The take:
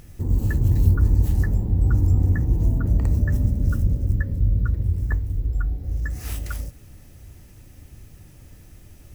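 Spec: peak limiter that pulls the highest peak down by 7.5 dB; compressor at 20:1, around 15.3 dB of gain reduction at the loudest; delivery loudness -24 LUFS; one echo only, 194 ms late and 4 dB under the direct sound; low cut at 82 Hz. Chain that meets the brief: high-pass 82 Hz; compression 20:1, threshold -31 dBFS; peak limiter -29 dBFS; delay 194 ms -4 dB; trim +13.5 dB

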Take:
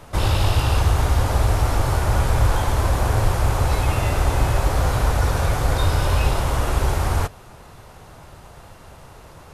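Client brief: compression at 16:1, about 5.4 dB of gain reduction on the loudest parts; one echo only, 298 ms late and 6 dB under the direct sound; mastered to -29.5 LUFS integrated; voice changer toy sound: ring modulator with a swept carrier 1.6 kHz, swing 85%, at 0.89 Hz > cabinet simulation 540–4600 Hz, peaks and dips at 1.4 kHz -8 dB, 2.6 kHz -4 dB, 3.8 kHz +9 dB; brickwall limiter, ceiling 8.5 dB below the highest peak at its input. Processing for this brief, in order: compression 16:1, threshold -18 dBFS; peak limiter -19 dBFS; delay 298 ms -6 dB; ring modulator with a swept carrier 1.6 kHz, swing 85%, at 0.89 Hz; cabinet simulation 540–4600 Hz, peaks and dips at 1.4 kHz -8 dB, 2.6 kHz -4 dB, 3.8 kHz +9 dB; trim -0.5 dB

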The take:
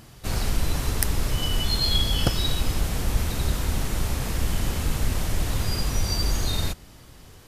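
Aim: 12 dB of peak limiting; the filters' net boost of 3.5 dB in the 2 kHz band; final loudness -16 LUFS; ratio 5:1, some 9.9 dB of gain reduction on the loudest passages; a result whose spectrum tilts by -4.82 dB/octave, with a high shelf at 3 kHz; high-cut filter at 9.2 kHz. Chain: low-pass 9.2 kHz; peaking EQ 2 kHz +7.5 dB; treble shelf 3 kHz -8.5 dB; compression 5:1, threshold -29 dBFS; trim +25.5 dB; peak limiter -5 dBFS

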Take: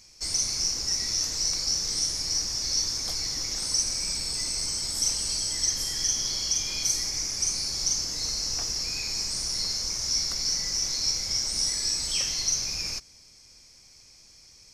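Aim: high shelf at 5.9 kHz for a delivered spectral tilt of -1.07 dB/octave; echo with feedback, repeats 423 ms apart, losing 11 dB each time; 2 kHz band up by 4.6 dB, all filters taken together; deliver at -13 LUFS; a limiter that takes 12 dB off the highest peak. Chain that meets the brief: peaking EQ 2 kHz +5 dB; treble shelf 5.9 kHz +3.5 dB; peak limiter -22 dBFS; feedback delay 423 ms, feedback 28%, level -11 dB; trim +15 dB

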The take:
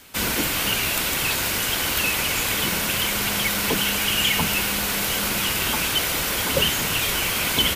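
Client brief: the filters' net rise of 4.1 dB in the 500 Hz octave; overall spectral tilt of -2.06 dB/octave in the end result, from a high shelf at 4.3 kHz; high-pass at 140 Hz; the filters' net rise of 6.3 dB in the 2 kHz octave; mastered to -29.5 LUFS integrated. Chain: high-pass 140 Hz; peaking EQ 500 Hz +4.5 dB; peaking EQ 2 kHz +9 dB; treble shelf 4.3 kHz -4.5 dB; trim -11 dB

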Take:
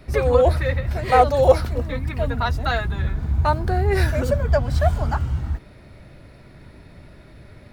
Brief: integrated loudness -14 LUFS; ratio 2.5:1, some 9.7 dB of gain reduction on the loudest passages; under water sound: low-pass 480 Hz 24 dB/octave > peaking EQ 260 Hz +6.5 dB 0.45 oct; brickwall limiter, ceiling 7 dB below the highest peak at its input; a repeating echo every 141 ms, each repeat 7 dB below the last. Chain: compression 2.5:1, threshold -23 dBFS; peak limiter -18.5 dBFS; low-pass 480 Hz 24 dB/octave; peaking EQ 260 Hz +6.5 dB 0.45 oct; feedback delay 141 ms, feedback 45%, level -7 dB; trim +14.5 dB

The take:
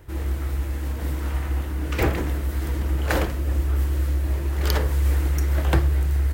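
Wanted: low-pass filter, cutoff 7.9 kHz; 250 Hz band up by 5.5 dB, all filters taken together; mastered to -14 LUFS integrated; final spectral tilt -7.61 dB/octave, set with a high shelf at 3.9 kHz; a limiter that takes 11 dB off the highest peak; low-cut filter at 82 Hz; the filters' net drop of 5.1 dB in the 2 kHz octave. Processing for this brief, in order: high-pass 82 Hz; low-pass 7.9 kHz; peaking EQ 250 Hz +8 dB; peaking EQ 2 kHz -5.5 dB; treble shelf 3.9 kHz -5.5 dB; trim +14 dB; peak limiter -4 dBFS

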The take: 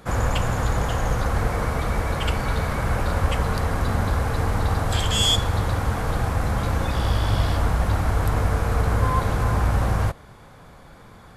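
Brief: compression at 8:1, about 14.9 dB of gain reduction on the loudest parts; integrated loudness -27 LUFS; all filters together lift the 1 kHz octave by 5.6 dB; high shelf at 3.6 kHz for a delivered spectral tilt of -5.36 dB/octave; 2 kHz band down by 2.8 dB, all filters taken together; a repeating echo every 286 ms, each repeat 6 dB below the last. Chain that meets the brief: peaking EQ 1 kHz +9 dB; peaking EQ 2 kHz -6 dB; treble shelf 3.6 kHz -9 dB; compression 8:1, threshold -31 dBFS; feedback delay 286 ms, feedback 50%, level -6 dB; trim +8 dB

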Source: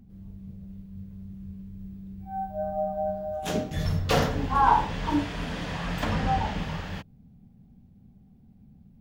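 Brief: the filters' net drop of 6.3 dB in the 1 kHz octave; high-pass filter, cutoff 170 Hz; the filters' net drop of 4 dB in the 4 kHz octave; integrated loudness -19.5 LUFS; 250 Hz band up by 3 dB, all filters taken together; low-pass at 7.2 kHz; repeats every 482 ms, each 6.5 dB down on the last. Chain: high-pass 170 Hz; low-pass 7.2 kHz; peaking EQ 250 Hz +6 dB; peaking EQ 1 kHz -8 dB; peaking EQ 4 kHz -4.5 dB; feedback delay 482 ms, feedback 47%, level -6.5 dB; trim +11 dB

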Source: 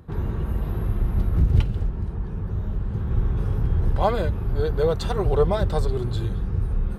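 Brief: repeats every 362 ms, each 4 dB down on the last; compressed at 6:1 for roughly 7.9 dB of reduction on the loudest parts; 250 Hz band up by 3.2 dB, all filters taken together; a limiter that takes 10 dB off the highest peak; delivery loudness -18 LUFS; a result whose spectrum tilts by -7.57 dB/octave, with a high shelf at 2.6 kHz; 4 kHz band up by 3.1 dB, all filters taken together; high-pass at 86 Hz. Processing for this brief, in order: high-pass 86 Hz; peaking EQ 250 Hz +5.5 dB; treble shelf 2.6 kHz -7 dB; peaking EQ 4 kHz +9 dB; compression 6:1, threshold -23 dBFS; peak limiter -24.5 dBFS; feedback delay 362 ms, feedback 63%, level -4 dB; trim +13 dB

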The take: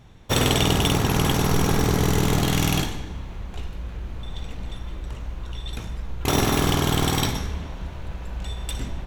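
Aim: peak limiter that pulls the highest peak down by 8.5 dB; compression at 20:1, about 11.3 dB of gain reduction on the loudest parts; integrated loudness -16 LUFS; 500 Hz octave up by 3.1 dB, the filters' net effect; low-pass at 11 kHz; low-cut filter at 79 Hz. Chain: high-pass 79 Hz; low-pass 11 kHz; peaking EQ 500 Hz +4 dB; compression 20:1, threshold -27 dBFS; trim +20 dB; peak limiter -4.5 dBFS

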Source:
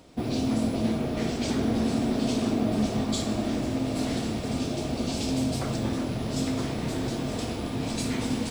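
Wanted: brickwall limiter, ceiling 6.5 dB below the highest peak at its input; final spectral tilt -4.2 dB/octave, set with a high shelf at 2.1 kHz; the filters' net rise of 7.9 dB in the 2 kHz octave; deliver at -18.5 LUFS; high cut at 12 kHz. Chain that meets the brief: low-pass 12 kHz; peaking EQ 2 kHz +5.5 dB; treble shelf 2.1 kHz +7 dB; trim +10 dB; peak limiter -9 dBFS

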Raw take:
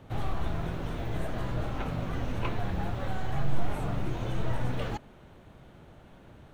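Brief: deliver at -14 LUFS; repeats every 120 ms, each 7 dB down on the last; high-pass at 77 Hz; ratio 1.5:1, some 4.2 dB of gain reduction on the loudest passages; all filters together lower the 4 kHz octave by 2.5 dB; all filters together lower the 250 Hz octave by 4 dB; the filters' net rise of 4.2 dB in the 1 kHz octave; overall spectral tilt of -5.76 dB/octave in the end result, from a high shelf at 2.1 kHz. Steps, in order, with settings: high-pass 77 Hz; peaking EQ 250 Hz -6.5 dB; peaking EQ 1 kHz +5.5 dB; treble shelf 2.1 kHz +4 dB; peaking EQ 4 kHz -8 dB; compression 1.5:1, threshold -38 dBFS; feedback delay 120 ms, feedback 45%, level -7 dB; trim +22.5 dB

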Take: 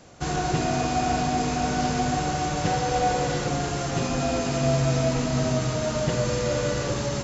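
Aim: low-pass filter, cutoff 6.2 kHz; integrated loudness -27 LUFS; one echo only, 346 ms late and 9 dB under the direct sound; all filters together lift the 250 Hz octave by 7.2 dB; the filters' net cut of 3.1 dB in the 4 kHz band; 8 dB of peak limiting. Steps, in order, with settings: low-pass 6.2 kHz; peaking EQ 250 Hz +8.5 dB; peaking EQ 4 kHz -3 dB; peak limiter -16 dBFS; delay 346 ms -9 dB; trim -3 dB

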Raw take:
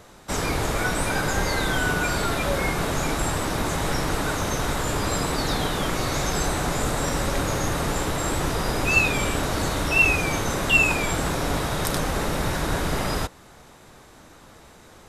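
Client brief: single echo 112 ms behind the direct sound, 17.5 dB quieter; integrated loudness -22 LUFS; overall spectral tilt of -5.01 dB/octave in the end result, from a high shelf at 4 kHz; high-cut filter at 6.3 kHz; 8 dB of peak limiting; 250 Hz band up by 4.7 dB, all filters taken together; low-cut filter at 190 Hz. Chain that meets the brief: high-pass 190 Hz; low-pass 6.3 kHz; peaking EQ 250 Hz +8 dB; treble shelf 4 kHz -6.5 dB; peak limiter -16 dBFS; delay 112 ms -17.5 dB; trim +3.5 dB

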